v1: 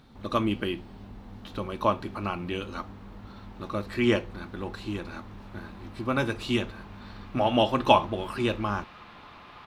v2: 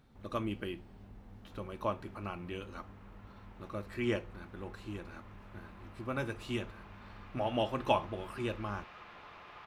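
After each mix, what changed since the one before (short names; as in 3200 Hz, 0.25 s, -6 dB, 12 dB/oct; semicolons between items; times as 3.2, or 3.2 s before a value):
speech -7.0 dB; master: add ten-band EQ 250 Hz -4 dB, 1000 Hz -4 dB, 4000 Hz -7 dB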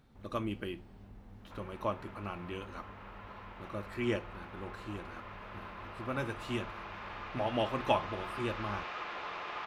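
background +11.5 dB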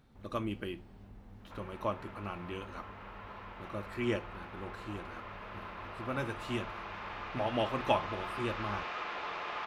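reverb: on, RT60 0.90 s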